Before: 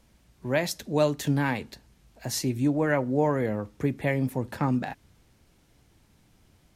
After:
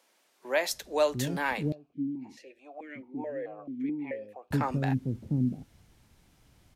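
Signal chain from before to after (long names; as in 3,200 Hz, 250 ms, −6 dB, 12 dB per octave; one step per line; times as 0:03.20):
multiband delay without the direct sound highs, lows 700 ms, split 370 Hz
0:01.72–0:04.51: formant filter that steps through the vowels 4.6 Hz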